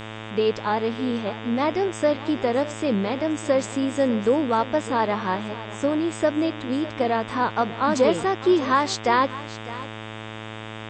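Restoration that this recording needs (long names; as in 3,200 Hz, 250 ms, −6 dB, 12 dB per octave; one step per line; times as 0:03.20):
hum removal 109.5 Hz, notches 34
downward expander −28 dBFS, range −21 dB
echo removal 604 ms −16.5 dB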